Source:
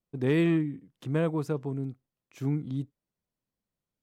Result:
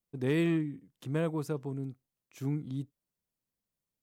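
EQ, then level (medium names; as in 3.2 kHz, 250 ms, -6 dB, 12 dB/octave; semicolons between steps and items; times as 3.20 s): treble shelf 5.7 kHz +8.5 dB; -4.0 dB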